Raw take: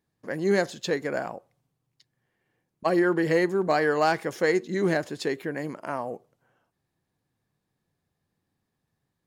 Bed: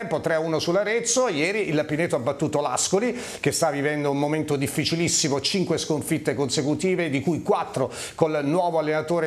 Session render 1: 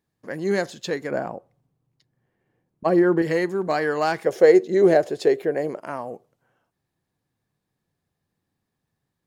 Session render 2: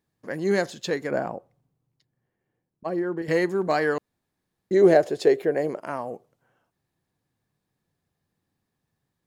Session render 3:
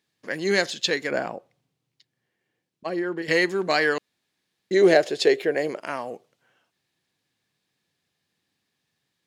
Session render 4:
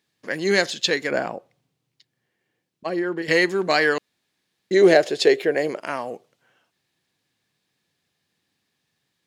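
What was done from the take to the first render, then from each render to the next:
1.11–3.22 tilt shelf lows +6 dB, about 1300 Hz; 4.26–5.79 band shelf 520 Hz +11 dB 1.3 oct
1.36–3.28 fade out quadratic, to -10 dB; 3.98–4.71 room tone
weighting filter D
gain +2.5 dB; limiter -3 dBFS, peak gain reduction 1 dB

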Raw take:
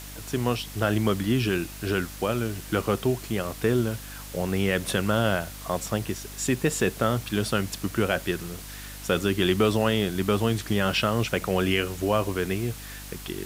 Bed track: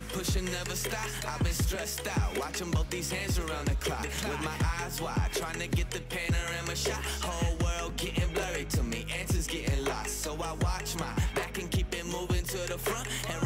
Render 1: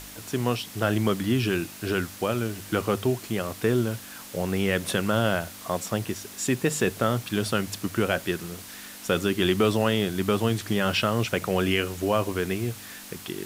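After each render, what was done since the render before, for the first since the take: de-hum 50 Hz, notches 3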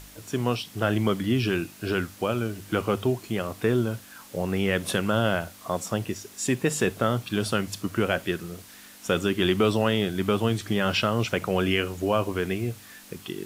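noise print and reduce 6 dB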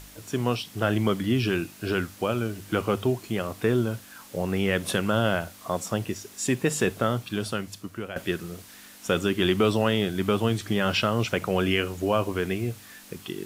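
6.94–8.16 fade out, to -13 dB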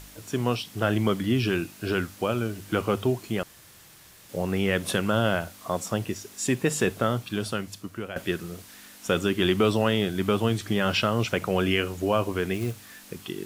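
3.43–4.29 room tone; 12.54–13.06 short-mantissa float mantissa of 2-bit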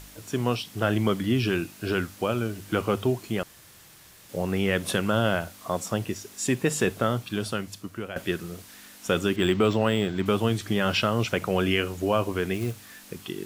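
9.36–10.26 decimation joined by straight lines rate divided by 4×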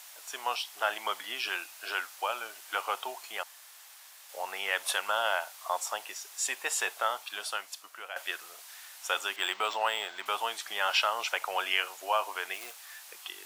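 Chebyshev high-pass 760 Hz, order 3; dynamic EQ 890 Hz, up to +6 dB, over -52 dBFS, Q 7.8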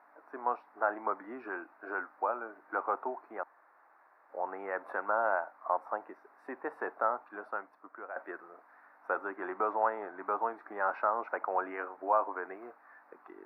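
inverse Chebyshev low-pass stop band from 2900 Hz, stop band 40 dB; bell 280 Hz +13.5 dB 0.89 oct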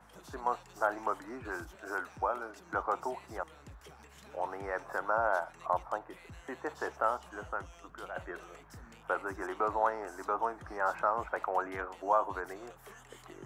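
add bed track -22 dB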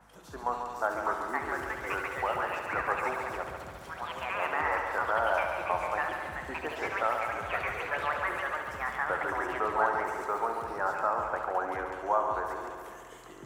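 echoes that change speed 0.72 s, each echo +5 st, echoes 2; multi-head echo 70 ms, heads first and second, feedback 70%, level -9.5 dB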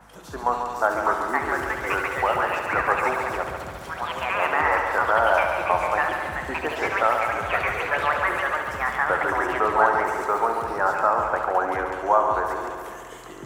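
gain +8.5 dB

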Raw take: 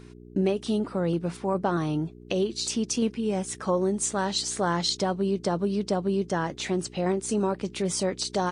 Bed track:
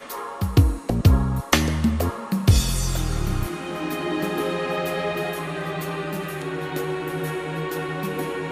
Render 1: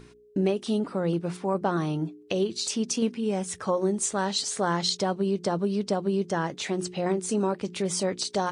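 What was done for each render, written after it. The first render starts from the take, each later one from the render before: de-hum 60 Hz, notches 6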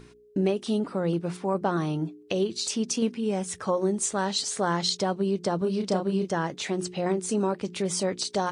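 5.58–6.32 doubler 32 ms -5 dB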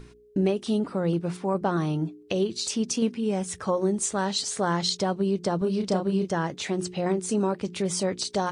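low shelf 78 Hz +11.5 dB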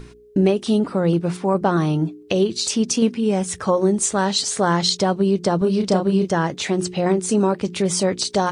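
gain +7 dB

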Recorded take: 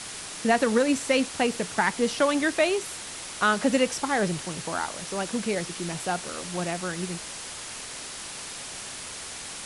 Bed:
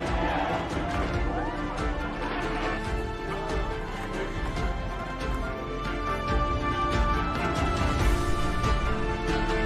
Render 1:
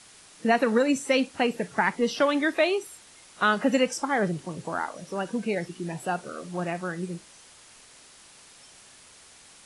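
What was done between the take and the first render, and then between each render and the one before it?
noise print and reduce 14 dB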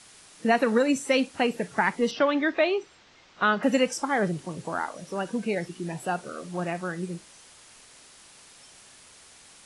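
2.11–3.63 Bessel low-pass 3800 Hz, order 8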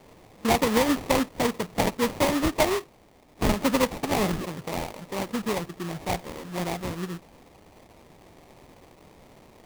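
4.23–4.46 painted sound fall 1000–2400 Hz -32 dBFS; sample-rate reducer 1500 Hz, jitter 20%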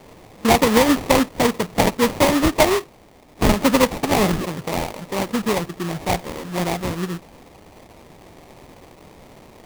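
gain +7 dB

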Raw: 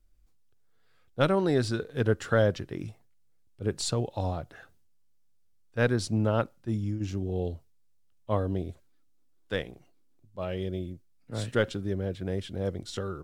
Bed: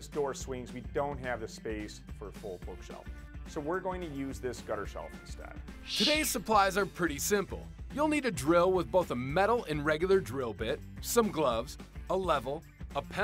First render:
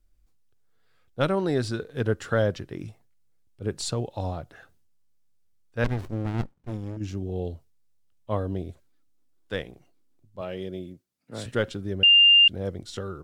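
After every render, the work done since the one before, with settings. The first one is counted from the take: 5.84–6.97 running maximum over 65 samples; 10.41–11.46 HPF 150 Hz; 12.03–12.48 bleep 2800 Hz -12 dBFS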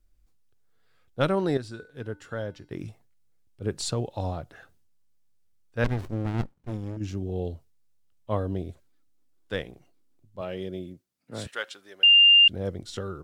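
1.57–2.71 resonator 300 Hz, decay 0.45 s, harmonics odd, mix 70%; 11.47–12.14 HPF 1000 Hz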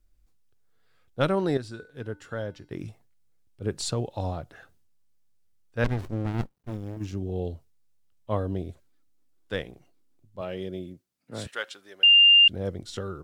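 6.32–7.13 G.711 law mismatch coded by A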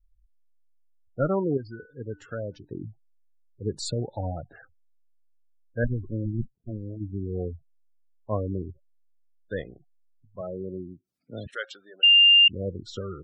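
spectral gate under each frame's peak -15 dB strong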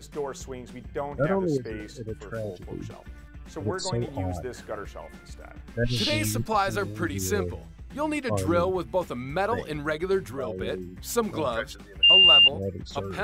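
add bed +1 dB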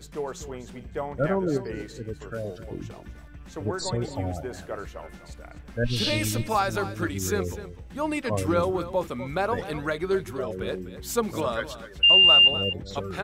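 echo 0.251 s -13.5 dB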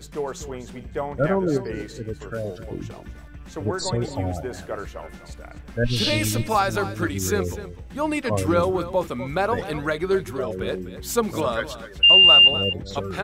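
gain +3.5 dB

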